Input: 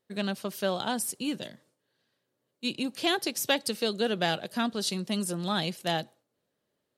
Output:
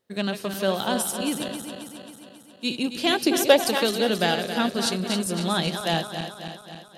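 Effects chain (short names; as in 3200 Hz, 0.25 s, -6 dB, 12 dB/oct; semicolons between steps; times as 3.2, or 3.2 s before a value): regenerating reverse delay 0.135 s, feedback 76%, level -8 dB; 3.25–3.85 bell 280 Hz -> 1300 Hz +9.5 dB 1 oct; gain +4 dB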